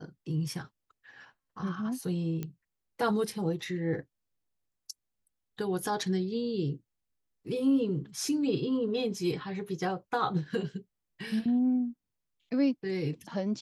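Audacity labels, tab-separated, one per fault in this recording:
2.430000	2.430000	click −22 dBFS

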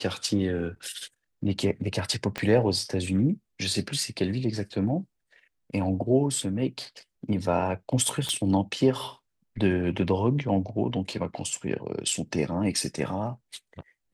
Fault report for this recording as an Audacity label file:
2.380000	2.380000	click −15 dBFS
8.290000	8.290000	click −15 dBFS

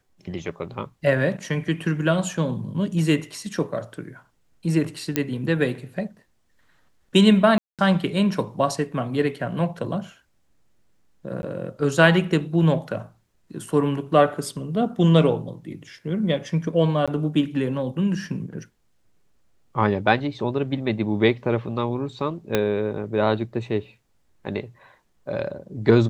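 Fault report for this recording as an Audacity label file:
5.160000	5.160000	click −6 dBFS
7.580000	7.790000	drop-out 207 ms
11.420000	11.430000	drop-out 11 ms
17.060000	17.080000	drop-out 16 ms
22.550000	22.550000	click −6 dBFS

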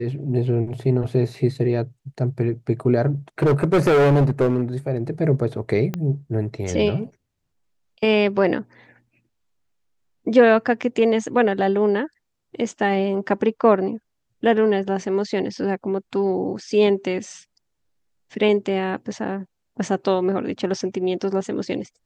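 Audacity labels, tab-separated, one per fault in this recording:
3.420000	4.620000	clipping −13 dBFS
5.940000	5.940000	click −13 dBFS

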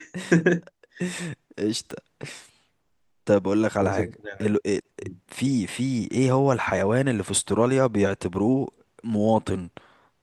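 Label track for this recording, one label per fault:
1.910000	1.910000	click −22 dBFS

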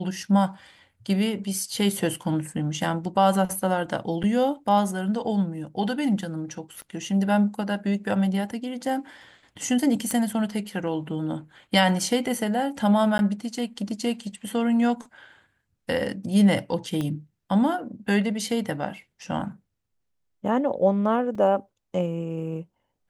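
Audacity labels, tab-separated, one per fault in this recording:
4.230000	4.240000	drop-out 7.7 ms
6.820000	6.820000	click −29 dBFS
10.110000	10.110000	click −14 dBFS
13.180000	13.190000	drop-out 11 ms
17.010000	17.010000	click −17 dBFS
21.350000	21.350000	drop-out 3.5 ms

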